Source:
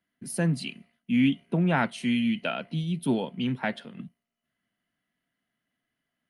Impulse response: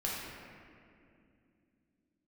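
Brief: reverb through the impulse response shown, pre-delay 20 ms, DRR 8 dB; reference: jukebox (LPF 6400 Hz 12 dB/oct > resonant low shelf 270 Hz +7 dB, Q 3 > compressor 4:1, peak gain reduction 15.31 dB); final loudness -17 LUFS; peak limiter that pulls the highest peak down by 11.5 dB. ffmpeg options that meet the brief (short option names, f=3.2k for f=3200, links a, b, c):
-filter_complex "[0:a]alimiter=limit=-23.5dB:level=0:latency=1,asplit=2[a][b];[1:a]atrim=start_sample=2205,adelay=20[c];[b][c]afir=irnorm=-1:irlink=0,volume=-13dB[d];[a][d]amix=inputs=2:normalize=0,lowpass=6.4k,lowshelf=f=270:t=q:w=3:g=7,acompressor=threshold=-33dB:ratio=4,volume=18.5dB"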